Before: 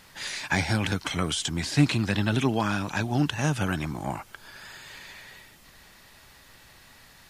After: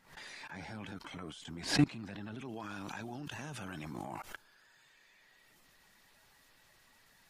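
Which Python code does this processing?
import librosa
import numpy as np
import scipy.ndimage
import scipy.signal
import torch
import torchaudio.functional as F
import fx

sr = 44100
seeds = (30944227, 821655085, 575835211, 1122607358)

y = fx.spec_quant(x, sr, step_db=15)
y = fx.peak_eq(y, sr, hz=68.0, db=-10.5, octaves=2.0)
y = fx.level_steps(y, sr, step_db=21)
y = fx.high_shelf(y, sr, hz=2500.0, db=fx.steps((0.0, -11.0), (2.44, -2.0)))
y = fx.pre_swell(y, sr, db_per_s=130.0)
y = F.gain(torch.from_numpy(y), -1.5).numpy()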